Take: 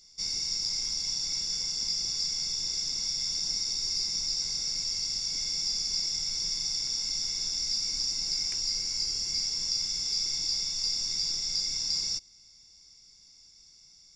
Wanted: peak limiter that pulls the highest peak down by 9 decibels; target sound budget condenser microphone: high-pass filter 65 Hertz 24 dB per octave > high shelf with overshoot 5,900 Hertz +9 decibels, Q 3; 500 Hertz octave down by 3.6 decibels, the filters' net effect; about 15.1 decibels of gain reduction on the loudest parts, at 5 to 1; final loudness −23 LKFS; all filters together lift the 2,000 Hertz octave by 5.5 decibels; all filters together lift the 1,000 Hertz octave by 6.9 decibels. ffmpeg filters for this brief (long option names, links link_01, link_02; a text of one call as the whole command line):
ffmpeg -i in.wav -af "equalizer=frequency=500:width_type=o:gain=-7.5,equalizer=frequency=1000:width_type=o:gain=9,equalizer=frequency=2000:width_type=o:gain=6,acompressor=threshold=-44dB:ratio=5,alimiter=level_in=15.5dB:limit=-24dB:level=0:latency=1,volume=-15.5dB,highpass=frequency=65:width=0.5412,highpass=frequency=65:width=1.3066,highshelf=frequency=5900:width_type=q:width=3:gain=9,volume=20.5dB" out.wav